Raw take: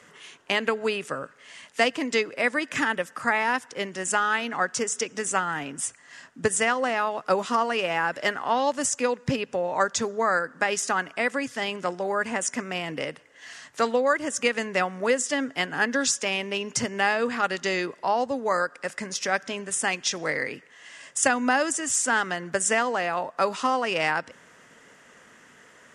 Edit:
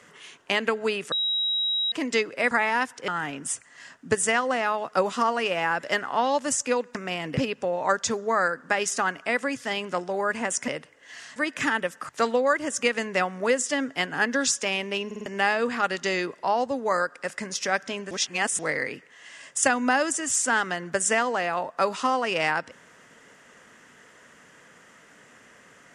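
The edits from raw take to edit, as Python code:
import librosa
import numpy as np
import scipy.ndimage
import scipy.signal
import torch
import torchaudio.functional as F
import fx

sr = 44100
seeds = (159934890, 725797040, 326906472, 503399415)

y = fx.edit(x, sr, fx.bleep(start_s=1.12, length_s=0.8, hz=3840.0, db=-22.5),
    fx.move(start_s=2.51, length_s=0.73, to_s=13.69),
    fx.cut(start_s=3.81, length_s=1.6),
    fx.move(start_s=12.59, length_s=0.42, to_s=9.28),
    fx.stutter_over(start_s=16.66, slice_s=0.05, count=4),
    fx.reverse_span(start_s=19.71, length_s=0.48), tone=tone)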